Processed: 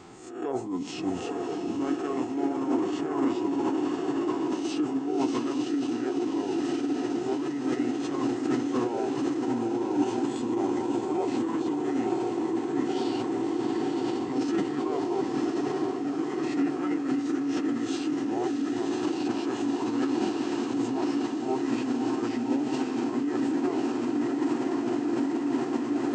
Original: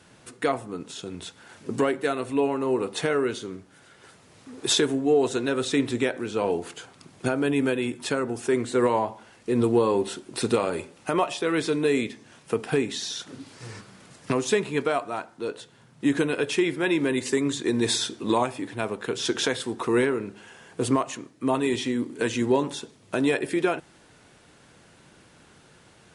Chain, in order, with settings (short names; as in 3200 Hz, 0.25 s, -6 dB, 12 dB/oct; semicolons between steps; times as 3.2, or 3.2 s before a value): spectral swells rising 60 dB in 0.44 s; diffused feedback echo 1.045 s, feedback 76%, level -5 dB; reverse; compressor 10:1, threshold -35 dBFS, peak gain reduction 20.5 dB; reverse; small resonant body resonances 380/760/1300 Hz, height 15 dB, ringing for 35 ms; on a send: diffused feedback echo 0.64 s, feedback 43%, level -6.5 dB; on the sum: formant shift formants -4 st